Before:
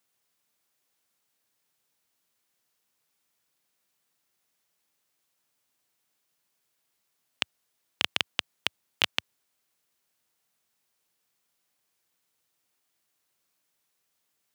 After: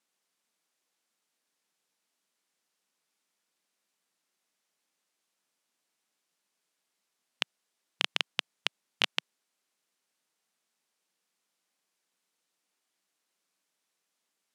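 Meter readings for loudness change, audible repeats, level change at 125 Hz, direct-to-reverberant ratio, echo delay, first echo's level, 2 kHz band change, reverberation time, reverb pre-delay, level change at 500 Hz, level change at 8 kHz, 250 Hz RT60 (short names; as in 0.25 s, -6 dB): -2.0 dB, none, -7.5 dB, none, none, none, -2.0 dB, none, none, -2.0 dB, -3.0 dB, none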